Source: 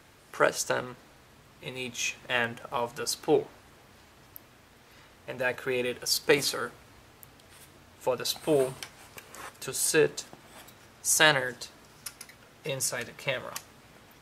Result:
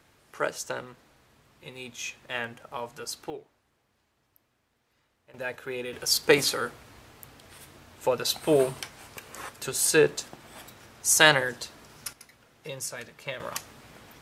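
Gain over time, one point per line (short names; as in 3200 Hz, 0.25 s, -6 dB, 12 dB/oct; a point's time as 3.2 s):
-5 dB
from 3.3 s -17 dB
from 5.34 s -5 dB
from 5.93 s +3 dB
from 12.13 s -5 dB
from 13.4 s +4 dB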